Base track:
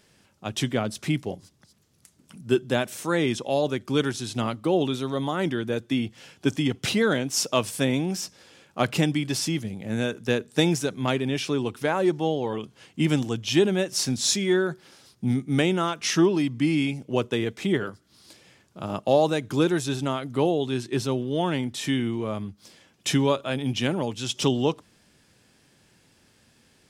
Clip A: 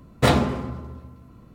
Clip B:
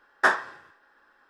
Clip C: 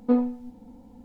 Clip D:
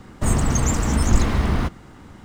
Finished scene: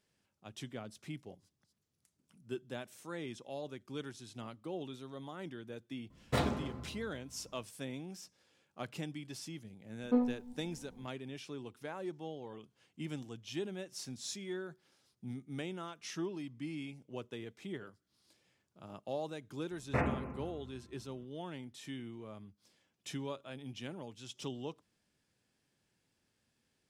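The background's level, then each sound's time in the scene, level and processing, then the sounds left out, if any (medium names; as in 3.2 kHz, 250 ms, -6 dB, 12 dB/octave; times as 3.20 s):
base track -19 dB
6.10 s: add A -14 dB
10.03 s: add C -8 dB
19.71 s: add A -14.5 dB + careless resampling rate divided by 8×, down none, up filtered
not used: B, D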